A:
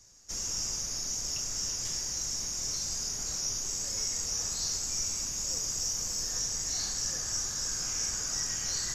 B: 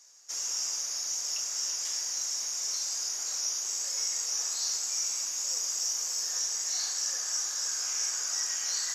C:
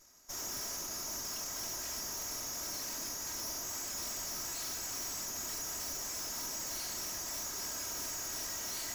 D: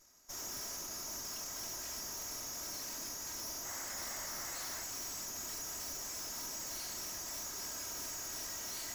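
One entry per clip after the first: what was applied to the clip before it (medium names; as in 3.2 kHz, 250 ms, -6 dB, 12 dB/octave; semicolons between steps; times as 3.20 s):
high-pass 710 Hz 12 dB/octave; trim +1.5 dB
comb filter that takes the minimum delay 3.1 ms; wavefolder -31 dBFS; trim -3.5 dB
painted sound noise, 3.65–4.84 s, 500–2200 Hz -48 dBFS; trim -3 dB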